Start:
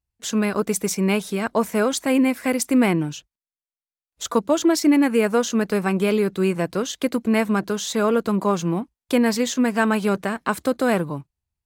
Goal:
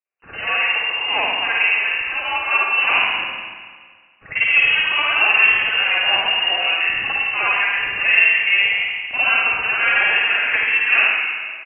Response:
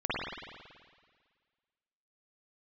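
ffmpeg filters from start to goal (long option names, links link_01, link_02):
-filter_complex "[0:a]highpass=frequency=470:width=0.5412,highpass=frequency=470:width=1.3066,asettb=1/sr,asplit=3[link_01][link_02][link_03];[link_01]atrim=end=1.714[link_04];[link_02]atrim=start=1.71:end=2.21,asetpts=PTS-STARTPTS,afade=type=in:duration=0.004:curve=qsin,afade=type=out:start_time=0.496:duration=0.004:curve=qsin,acompressor=threshold=-29dB:ratio=6[link_05];[link_03]atrim=start=2.206[link_06];[link_04][link_05]acrossfade=duration=0.004:curve1=hsin:curve2=qsin[link_07];[link_07][link_06]acrossfade=duration=0.004:curve1=qsin:curve2=hsin,asettb=1/sr,asplit=3[link_08][link_09][link_10];[link_08]atrim=end=5.494[link_11];[link_09]atrim=start=5.49:end=6.46,asetpts=PTS-STARTPTS,afade=type=in:duration=0.004:curve=qsin,afade=type=out:start_time=0.966:duration=0.004:curve=qsin,afreqshift=-26[link_12];[link_10]atrim=start=6.456[link_13];[link_11][link_12]acrossfade=duration=0.004:curve1=hsin:curve2=qsin[link_14];[link_14][link_13]acrossfade=duration=0.004:curve1=qsin:curve2=hsin,asoftclip=type=hard:threshold=-14.5dB,aecho=1:1:76:0.422[link_15];[1:a]atrim=start_sample=2205[link_16];[link_15][link_16]afir=irnorm=-1:irlink=0,lowpass=frequency=2700:width_type=q:width=0.5098,lowpass=frequency=2700:width_type=q:width=0.6013,lowpass=frequency=2700:width_type=q:width=0.9,lowpass=frequency=2700:width_type=q:width=2.563,afreqshift=-3200,volume=-1dB"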